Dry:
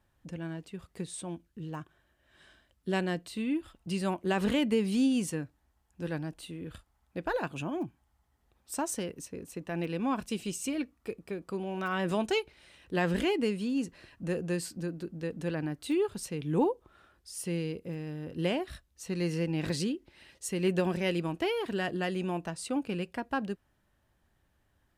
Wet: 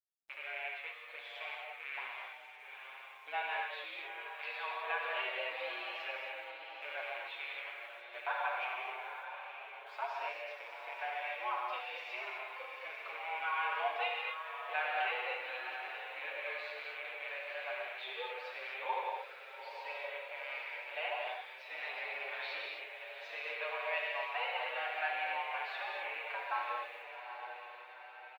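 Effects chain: rattle on loud lows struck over -42 dBFS, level -33 dBFS; in parallel at +3 dB: compression 12:1, threshold -38 dBFS, peak gain reduction 16 dB; on the sum: gate -59 dBFS, range -14 dB; tape speed -12%; mistuned SSB +130 Hz 580–3400 Hz; gated-style reverb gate 290 ms flat, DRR -2 dB; bit crusher 11-bit; on a send: echo that smears into a reverb 855 ms, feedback 53%, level -8.5 dB; on the sum: endless flanger 7.1 ms +0.31 Hz; trim -4 dB

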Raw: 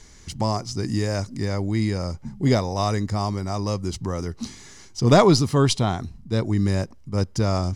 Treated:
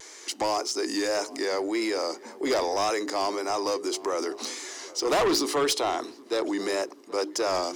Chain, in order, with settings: steep high-pass 310 Hz 48 dB/octave; hum notches 60/120/180/240/300/360/420 Hz; vibrato 1.8 Hz 61 cents; in parallel at +2 dB: compression, threshold -34 dBFS, peak gain reduction 20.5 dB; on the sum: overload inside the chain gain 17.5 dB; transient shaper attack 0 dB, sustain +4 dB; saturation -19 dBFS, distortion -18 dB; on a send: tape echo 778 ms, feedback 67%, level -19 dB, low-pass 1.7 kHz

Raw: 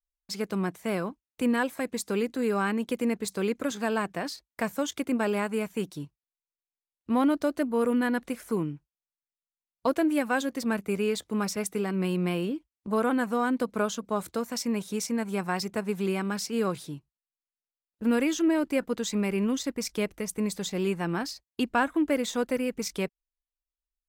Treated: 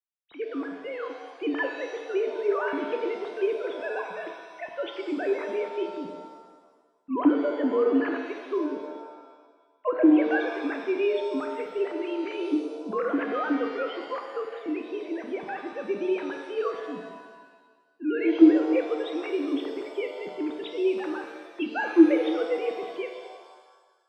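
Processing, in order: formants replaced by sine waves; vibrato 0.69 Hz 58 cents; pitch-shifted reverb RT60 1.4 s, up +7 st, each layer -8 dB, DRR 3.5 dB

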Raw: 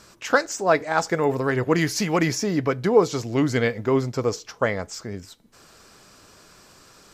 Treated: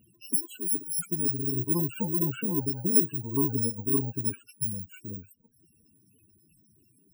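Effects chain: bit-reversed sample order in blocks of 64 samples; comb of notches 610 Hz; loudest bins only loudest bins 16; trim -3 dB

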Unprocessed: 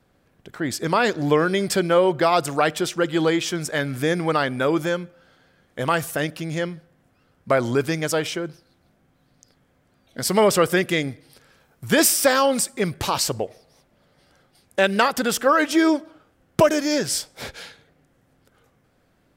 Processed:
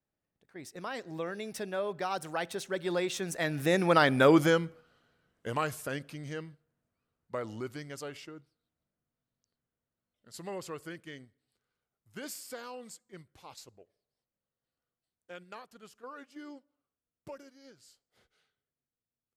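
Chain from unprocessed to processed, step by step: Doppler pass-by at 4.26 s, 32 m/s, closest 13 m; gate -49 dBFS, range -6 dB

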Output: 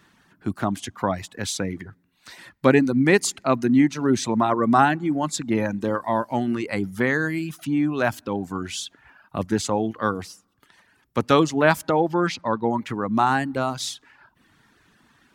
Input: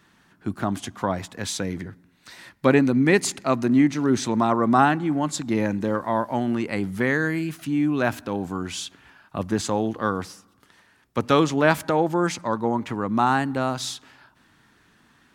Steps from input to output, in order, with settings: reverb removal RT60 0.72 s; 12.00–12.71 s: resonant high shelf 5.8 kHz -8.5 dB, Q 1.5; trim +1.5 dB

